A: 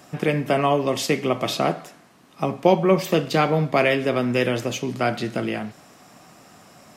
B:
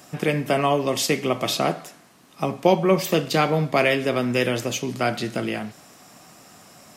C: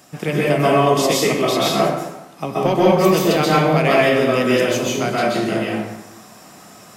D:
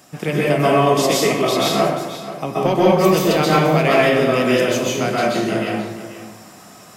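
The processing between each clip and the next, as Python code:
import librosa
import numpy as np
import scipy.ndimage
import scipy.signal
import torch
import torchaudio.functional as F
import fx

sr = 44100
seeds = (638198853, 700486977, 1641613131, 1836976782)

y1 = fx.high_shelf(x, sr, hz=4200.0, db=7.0)
y1 = F.gain(torch.from_numpy(y1), -1.0).numpy()
y2 = 10.0 ** (-6.5 / 20.0) * np.tanh(y1 / 10.0 ** (-6.5 / 20.0))
y2 = fx.rev_plate(y2, sr, seeds[0], rt60_s=0.98, hf_ratio=0.6, predelay_ms=115, drr_db=-6.0)
y2 = F.gain(torch.from_numpy(y2), -1.0).numpy()
y3 = y2 + 10.0 ** (-13.5 / 20.0) * np.pad(y2, (int(483 * sr / 1000.0), 0))[:len(y2)]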